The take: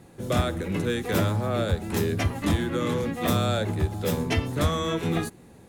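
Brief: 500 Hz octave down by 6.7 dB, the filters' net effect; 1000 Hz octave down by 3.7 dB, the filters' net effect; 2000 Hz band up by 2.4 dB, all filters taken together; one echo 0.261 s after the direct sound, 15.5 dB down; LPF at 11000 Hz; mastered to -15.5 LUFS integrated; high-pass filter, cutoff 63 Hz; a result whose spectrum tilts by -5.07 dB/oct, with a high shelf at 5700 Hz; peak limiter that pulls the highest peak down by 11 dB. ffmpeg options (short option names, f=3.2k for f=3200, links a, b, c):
-af "highpass=63,lowpass=11k,equalizer=f=500:t=o:g=-7.5,equalizer=f=1k:t=o:g=-4.5,equalizer=f=2k:t=o:g=5.5,highshelf=f=5.7k:g=-6.5,alimiter=limit=-22.5dB:level=0:latency=1,aecho=1:1:261:0.168,volume=16.5dB"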